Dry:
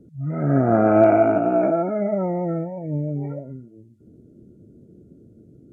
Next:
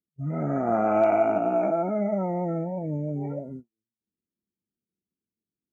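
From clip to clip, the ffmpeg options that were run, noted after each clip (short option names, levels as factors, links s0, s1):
-filter_complex "[0:a]equalizer=f=125:t=o:w=0.33:g=-8,equalizer=f=200:t=o:w=0.33:g=6,equalizer=f=800:t=o:w=0.33:g=4,equalizer=f=1600:t=o:w=0.33:g=-11,agate=range=0.00501:threshold=0.0141:ratio=16:detection=peak,acrossover=split=800[s0][s1];[s0]acompressor=threshold=0.0501:ratio=6[s2];[s2][s1]amix=inputs=2:normalize=0"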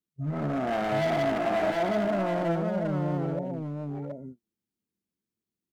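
-filter_complex "[0:a]asoftclip=type=hard:threshold=0.0501,asplit=2[s0][s1];[s1]aecho=0:1:47|727:0.266|0.668[s2];[s0][s2]amix=inputs=2:normalize=0"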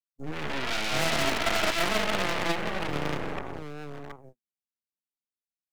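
-filter_complex "[0:a]aeval=exprs='if(lt(val(0),0),0.708*val(0),val(0))':c=same,aeval=exprs='0.1*(cos(1*acos(clip(val(0)/0.1,-1,1)))-cos(1*PI/2))+0.0355*(cos(3*acos(clip(val(0)/0.1,-1,1)))-cos(3*PI/2))+0.0141*(cos(6*acos(clip(val(0)/0.1,-1,1)))-cos(6*PI/2))':c=same,acrossover=split=220|1900[s0][s1][s2];[s2]aeval=exprs='0.0596*sin(PI/2*2.51*val(0)/0.0596)':c=same[s3];[s0][s1][s3]amix=inputs=3:normalize=0,volume=1.19"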